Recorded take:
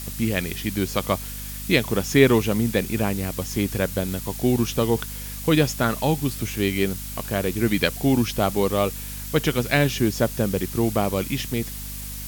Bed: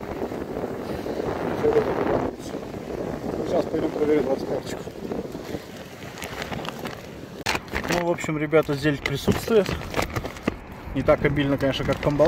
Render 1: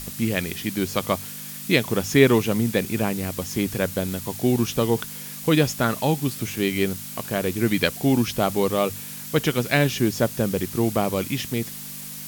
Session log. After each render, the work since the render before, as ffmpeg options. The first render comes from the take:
-af "bandreject=f=50:t=h:w=6,bandreject=f=100:t=h:w=6"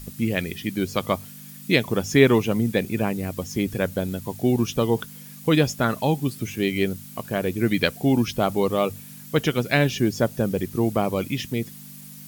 -af "afftdn=nr=10:nf=-36"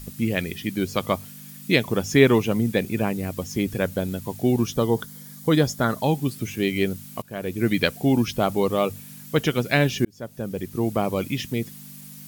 -filter_complex "[0:a]asettb=1/sr,asplit=3[s0][s1][s2];[s0]atrim=end=4.684[s3];[s1]atrim=start=4.68:end=6.04,asetpts=PTS-STARTPTS,afade=t=in:d=0.004:c=qsin,afade=t=out:st=1.356:d=0.004:c=qsin,equalizer=f=2600:t=o:w=0.28:g=-12.5[s4];[s2]atrim=start=6.036[s5];[s3][s4]acrossfade=d=0.004:c1=hsin:c2=qsin[s6];[s6][s5]acrossfade=d=0.004:c1=qsin:c2=hsin,asplit=3[s7][s8][s9];[s7]atrim=end=7.22,asetpts=PTS-STARTPTS,afade=t=out:st=7.216:d=0.004:c=hsin:silence=0.16788[s10];[s8]atrim=start=7.22:end=10.05,asetpts=PTS-STARTPTS,afade=t=in:d=0.44:silence=0.16788,afade=t=out:st=2.826:d=0.004:c=hsin[s11];[s9]atrim=start=10.05,asetpts=PTS-STARTPTS,afade=t=in:d=1.33:c=qsin[s12];[s10][s11][s12]concat=n=3:v=0:a=1"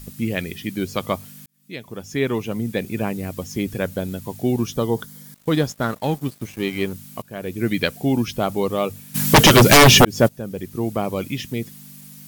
-filter_complex "[0:a]asettb=1/sr,asplit=3[s0][s1][s2];[s0]atrim=end=5.344[s3];[s1]atrim=start=5.34:end=6.93,asetpts=PTS-STARTPTS,afade=t=in:d=0.004:c=qsin,afade=t=out:st=1.586:d=0.004:c=qsin,aeval=exprs='sgn(val(0))*max(abs(val(0))-0.0126,0)':c=same[s4];[s2]atrim=start=6.926[s5];[s3][s4]acrossfade=d=0.004:c1=hsin:c2=qsin[s6];[s6][s5]acrossfade=d=0.004:c1=qsin:c2=hsin,asplit=3[s7][s8][s9];[s7]afade=t=out:st=9.14:d=0.02[s10];[s8]aeval=exprs='0.562*sin(PI/2*7.08*val(0)/0.562)':c=same,afade=t=in:st=9.14:d=0.02,afade=t=out:st=10.27:d=0.02[s11];[s9]afade=t=in:st=10.27:d=0.02[s12];[s10][s11][s12]amix=inputs=3:normalize=0,asplit=2[s13][s14];[s13]atrim=end=1.46,asetpts=PTS-STARTPTS,afade=t=out:st=1.456:d=0.004:c=hsin[s15];[s14]atrim=start=1.46,asetpts=PTS-STARTPTS,afade=t=in:d=1.6[s16];[s15][s16]concat=n=2:v=0:a=1"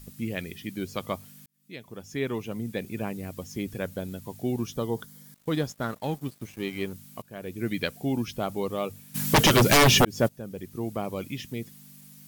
-af "volume=0.398"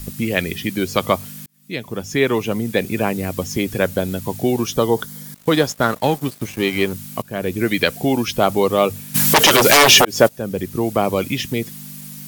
-filter_complex "[0:a]acrossover=split=350[s0][s1];[s0]acompressor=threshold=0.0141:ratio=6[s2];[s2][s1]amix=inputs=2:normalize=0,alimiter=level_in=5.62:limit=0.891:release=50:level=0:latency=1"

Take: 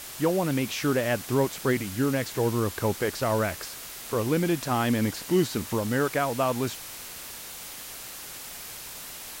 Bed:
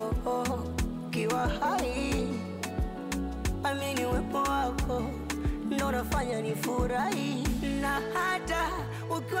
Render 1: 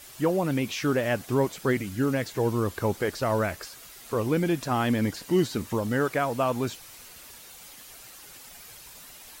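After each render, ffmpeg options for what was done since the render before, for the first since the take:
-af "afftdn=nr=9:nf=-41"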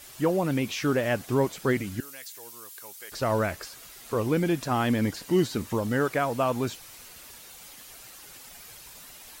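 -filter_complex "[0:a]asettb=1/sr,asplit=3[s0][s1][s2];[s0]atrim=end=2.004[s3];[s1]atrim=start=2:end=3.12,asetpts=PTS-STARTPTS,afade=t=in:d=0.004:c=qsin,afade=t=out:st=1.116:d=0.004:c=qsin,aderivative[s4];[s2]atrim=start=3.116[s5];[s3][s4]acrossfade=d=0.004:c1=hsin:c2=qsin[s6];[s6][s5]acrossfade=d=0.004:c1=qsin:c2=hsin"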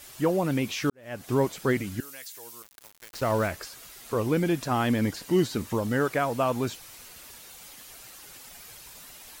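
-filter_complex "[0:a]asettb=1/sr,asplit=3[s0][s1][s2];[s0]atrim=end=2.624[s3];[s1]atrim=start=2.62:end=3.48,asetpts=PTS-STARTPTS,afade=t=in:d=0.004:c=qsin,afade=t=out:st=0.856:d=0.004:c=qsin,aeval=exprs='val(0)*gte(abs(val(0)),0.0158)':c=same[s4];[s2]atrim=start=3.476[s5];[s3][s4]acrossfade=d=0.004:c1=hsin:c2=qsin[s6];[s6][s5]acrossfade=d=0.004:c1=qsin:c2=hsin,asplit=2[s7][s8];[s7]atrim=end=0.9,asetpts=PTS-STARTPTS,afade=t=out:st=0.896:d=0.004:c=hsin[s9];[s8]atrim=start=0.9,asetpts=PTS-STARTPTS,afade=t=in:d=0.41:c=qua[s10];[s9][s10]concat=n=2:v=0:a=1"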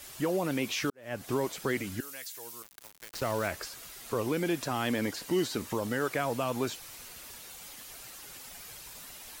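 -filter_complex "[0:a]acrossover=split=280|2200[s0][s1][s2];[s0]acompressor=threshold=0.0126:ratio=6[s3];[s1]alimiter=limit=0.0708:level=0:latency=1[s4];[s3][s4][s2]amix=inputs=3:normalize=0"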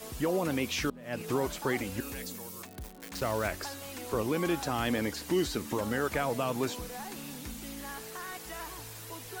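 -filter_complex "[1:a]volume=0.224[s0];[0:a][s0]amix=inputs=2:normalize=0"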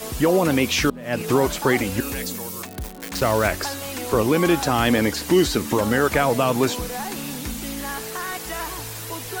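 -af "volume=3.76"

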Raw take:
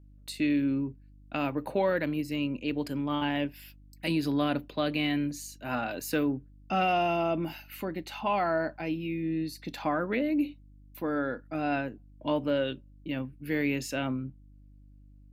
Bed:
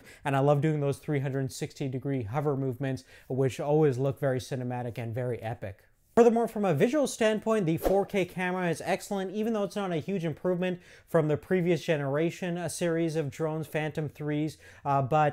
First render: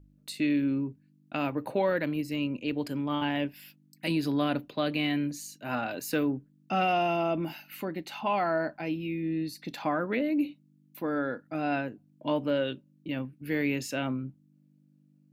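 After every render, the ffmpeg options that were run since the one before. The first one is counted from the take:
-af "bandreject=f=50:t=h:w=4,bandreject=f=100:t=h:w=4"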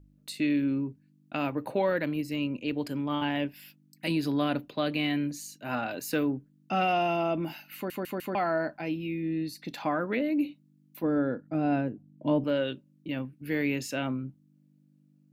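-filter_complex "[0:a]asettb=1/sr,asplit=3[s0][s1][s2];[s0]atrim=end=11.034[s3];[s1]atrim=start=11.03:end=12.44,asetpts=PTS-STARTPTS,afade=t=in:d=0.004:c=qsin,afade=t=out:st=1.406:d=0.004:c=qsin,tiltshelf=f=680:g=7.5[s4];[s2]atrim=start=12.436[s5];[s3][s4]acrossfade=d=0.004:c1=hsin:c2=qsin[s6];[s6][s5]acrossfade=d=0.004:c1=qsin:c2=hsin,asplit=5[s7][s8][s9][s10][s11];[s7]atrim=end=7.902[s12];[s8]atrim=start=7.748:end=7.902[s13];[s9]atrim=start=7.748:end=7.902[s14];[s10]atrim=start=7.748:end=7.902[s15];[s11]atrim=start=8.348[s16];[s12][s13]acrossfade=d=0.004:c1=hsin:c2=hsin[s17];[s17][s14]acrossfade=d=0.004:c1=hsin:c2=hsin[s18];[s18][s15]acrossfade=d=0.004:c1=hsin:c2=hsin[s19];[s19][s16]acrossfade=d=0.004:c1=hsin:c2=hsin"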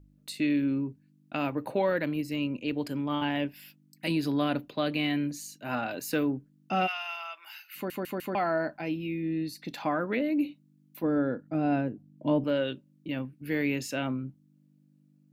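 -filter_complex "[0:a]asplit=3[s0][s1][s2];[s0]afade=t=out:st=6.86:d=0.02[s3];[s1]highpass=f=1200:w=0.5412,highpass=f=1200:w=1.3066,afade=t=in:st=6.86:d=0.02,afade=t=out:st=7.75:d=0.02[s4];[s2]afade=t=in:st=7.75:d=0.02[s5];[s3][s4][s5]amix=inputs=3:normalize=0"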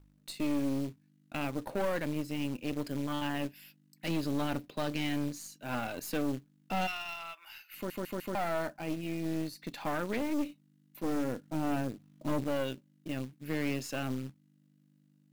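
-af "acrusher=bits=4:mode=log:mix=0:aa=0.000001,aeval=exprs='(tanh(22.4*val(0)+0.7)-tanh(0.7))/22.4':c=same"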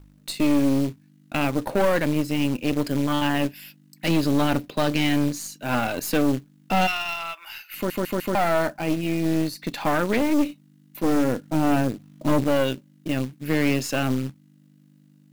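-af "volume=3.76"

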